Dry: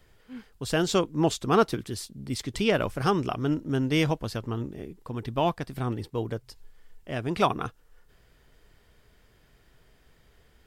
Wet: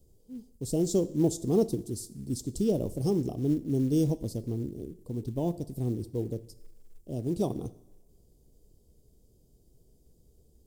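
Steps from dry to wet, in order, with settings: Chebyshev band-stop 390–7300 Hz, order 2; two-slope reverb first 0.68 s, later 2 s, from -18 dB, DRR 14 dB; short-mantissa float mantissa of 4-bit

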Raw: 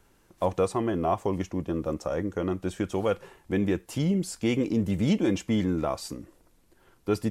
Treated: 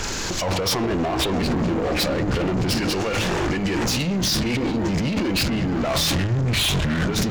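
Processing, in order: knee-point frequency compression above 2.1 kHz 1.5:1; on a send at -21 dB: reverberation, pre-delay 3 ms; on the sum: ever faster or slower copies 207 ms, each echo -7 st, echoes 3, each echo -6 dB; treble shelf 2.1 kHz +10.5 dB; compressor with a negative ratio -35 dBFS, ratio -1; in parallel at -4 dB: sine folder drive 14 dB, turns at -15.5 dBFS; 2.76–4.21 s: on the sum: tilt shelf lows -3.5 dB; peak limiter -22.5 dBFS, peak gain reduction 10.5 dB; waveshaping leveller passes 2; de-hum 52.27 Hz, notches 28; trim +4 dB

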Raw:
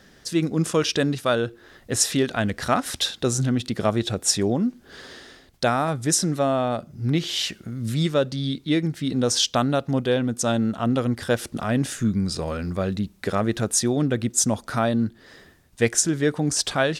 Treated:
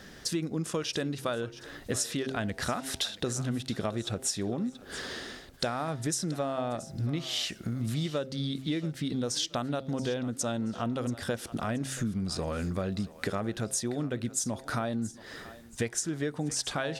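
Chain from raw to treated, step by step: de-hum 132.8 Hz, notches 7; compression, threshold -33 dBFS, peak gain reduction 17.5 dB; on a send: thinning echo 679 ms, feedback 37%, level -16 dB; on the sum: trim +3.5 dB

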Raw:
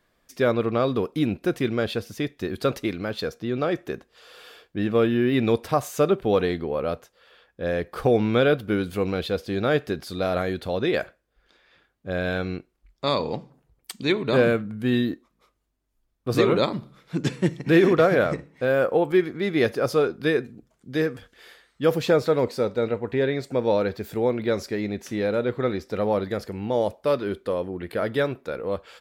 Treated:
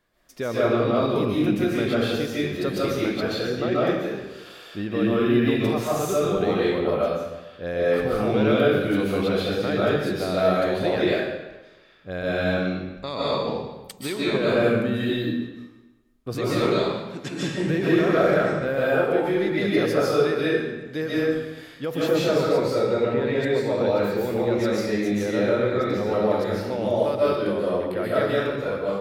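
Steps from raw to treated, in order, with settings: 16.57–17.32 s: bass shelf 460 Hz -8.5 dB; peak limiter -15.5 dBFS, peak gain reduction 7 dB; reverberation RT60 1.1 s, pre-delay 105 ms, DRR -7.5 dB; trim -4 dB

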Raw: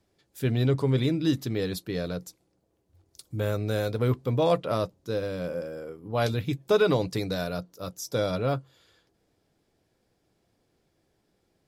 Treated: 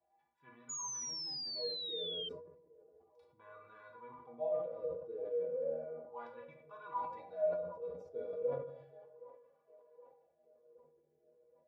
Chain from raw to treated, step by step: reverse; compression 5:1, threshold -37 dBFS, peak gain reduction 17.5 dB; reverse; tone controls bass +13 dB, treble -7 dB; hum notches 60/120/180 Hz; inharmonic resonator 72 Hz, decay 0.41 s, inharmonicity 0.03; wah-wah 0.34 Hz 430–1100 Hz, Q 17; peaking EQ 2 kHz +10 dB 2.5 oct; band-stop 1.3 kHz, Q 10; feedback echo behind a band-pass 769 ms, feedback 54%, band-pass 570 Hz, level -19 dB; simulated room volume 180 m³, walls mixed, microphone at 0.69 m; in parallel at -5 dB: bit crusher 5-bit; on the sum: painted sound fall, 0.69–2.29 s, 3.1–6.9 kHz -56 dBFS; decay stretcher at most 69 dB/s; trim +14 dB

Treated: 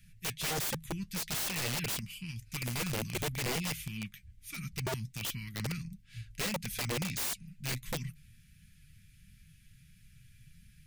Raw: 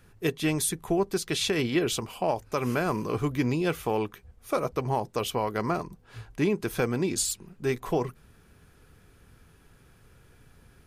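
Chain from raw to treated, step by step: Chebyshev band-stop 180–2100 Hz, order 3; flange 1.5 Hz, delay 4.4 ms, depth 4.9 ms, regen +54%; integer overflow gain 33 dB; trim +4 dB

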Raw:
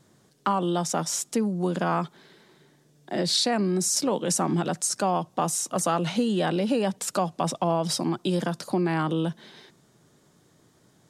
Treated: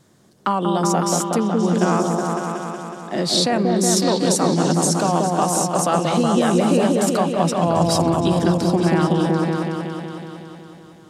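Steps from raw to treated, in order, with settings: 7.66–8.30 s: band noise 82–160 Hz -37 dBFS; delay with an opening low-pass 185 ms, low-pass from 750 Hz, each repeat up 1 oct, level 0 dB; trim +4 dB

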